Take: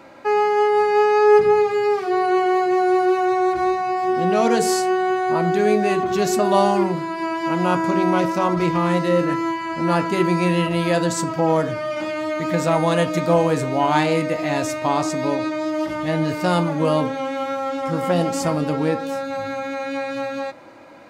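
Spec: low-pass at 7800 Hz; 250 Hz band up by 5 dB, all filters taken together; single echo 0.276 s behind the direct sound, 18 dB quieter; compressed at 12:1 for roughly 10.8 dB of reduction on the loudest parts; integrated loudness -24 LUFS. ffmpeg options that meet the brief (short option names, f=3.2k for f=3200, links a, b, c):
-af "lowpass=7.8k,equalizer=f=250:t=o:g=8,acompressor=threshold=-19dB:ratio=12,aecho=1:1:276:0.126,volume=-0.5dB"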